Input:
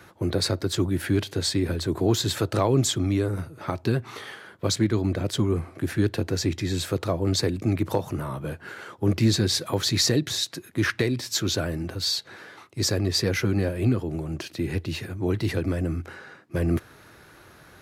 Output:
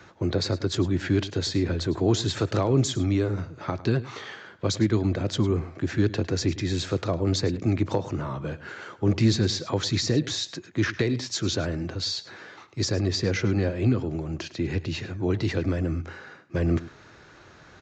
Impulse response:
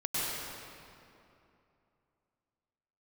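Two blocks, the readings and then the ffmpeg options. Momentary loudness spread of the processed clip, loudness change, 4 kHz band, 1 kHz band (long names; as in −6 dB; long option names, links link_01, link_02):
9 LU, −0.5 dB, −3.0 dB, −1.5 dB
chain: -filter_complex "[0:a]acrossover=split=480[link_01][link_02];[link_02]acompressor=threshold=-26dB:ratio=6[link_03];[link_01][link_03]amix=inputs=2:normalize=0,asplit=2[link_04][link_05];[link_05]aecho=0:1:105:0.141[link_06];[link_04][link_06]amix=inputs=2:normalize=0,aresample=16000,aresample=44100"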